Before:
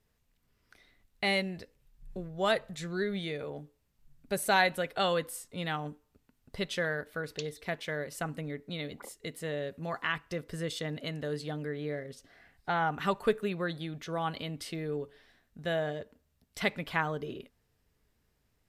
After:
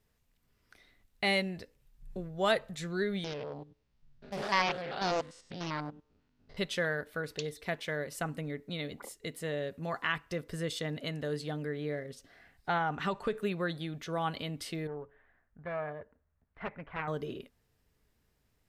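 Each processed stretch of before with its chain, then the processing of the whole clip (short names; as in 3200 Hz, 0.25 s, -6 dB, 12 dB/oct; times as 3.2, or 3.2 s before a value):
3.24–6.57 stepped spectrum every 0.1 s + LPF 5700 Hz 24 dB/oct + Doppler distortion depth 0.61 ms
12.77–13.37 LPF 7700 Hz + compressor, threshold -26 dBFS
14.87–17.08 self-modulated delay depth 0.5 ms + LPF 1800 Hz 24 dB/oct + bell 260 Hz -8.5 dB 2.4 oct
whole clip: dry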